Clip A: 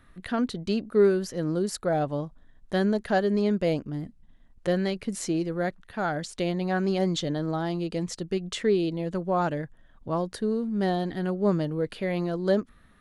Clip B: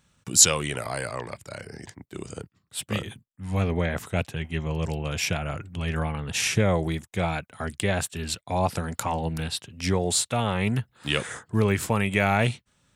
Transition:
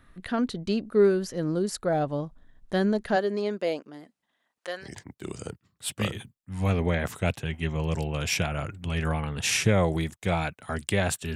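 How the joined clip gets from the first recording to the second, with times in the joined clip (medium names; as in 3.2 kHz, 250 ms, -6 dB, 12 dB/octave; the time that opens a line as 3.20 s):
clip A
3.15–4.89 s: high-pass 270 Hz -> 980 Hz
4.84 s: go over to clip B from 1.75 s, crossfade 0.10 s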